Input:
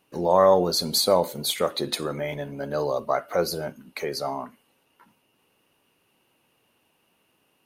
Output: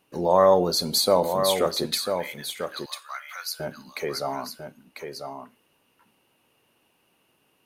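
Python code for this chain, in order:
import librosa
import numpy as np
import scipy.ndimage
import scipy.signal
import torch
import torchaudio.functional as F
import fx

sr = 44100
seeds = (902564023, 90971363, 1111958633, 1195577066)

p1 = fx.highpass(x, sr, hz=1400.0, slope=24, at=(1.86, 3.6))
y = p1 + fx.echo_single(p1, sr, ms=996, db=-7.0, dry=0)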